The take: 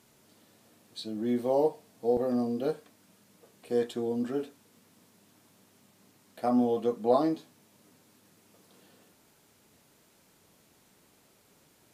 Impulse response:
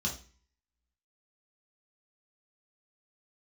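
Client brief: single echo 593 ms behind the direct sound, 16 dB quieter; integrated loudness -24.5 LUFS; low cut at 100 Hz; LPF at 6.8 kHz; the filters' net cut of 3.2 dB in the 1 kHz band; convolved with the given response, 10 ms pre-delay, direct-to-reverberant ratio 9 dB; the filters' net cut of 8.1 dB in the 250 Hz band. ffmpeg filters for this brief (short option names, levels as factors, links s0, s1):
-filter_complex "[0:a]highpass=100,lowpass=6800,equalizer=f=250:t=o:g=-9,equalizer=f=1000:t=o:g=-4,aecho=1:1:593:0.158,asplit=2[s0][s1];[1:a]atrim=start_sample=2205,adelay=10[s2];[s1][s2]afir=irnorm=-1:irlink=0,volume=0.224[s3];[s0][s3]amix=inputs=2:normalize=0,volume=2.99"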